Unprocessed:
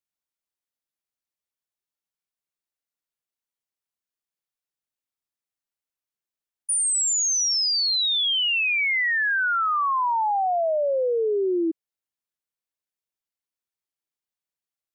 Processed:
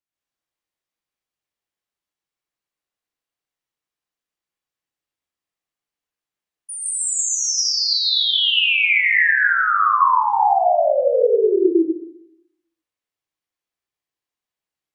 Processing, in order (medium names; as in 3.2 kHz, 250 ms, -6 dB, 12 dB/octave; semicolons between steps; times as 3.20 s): treble shelf 6.6 kHz -11 dB; plate-style reverb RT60 0.86 s, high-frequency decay 1×, pre-delay 105 ms, DRR -6 dB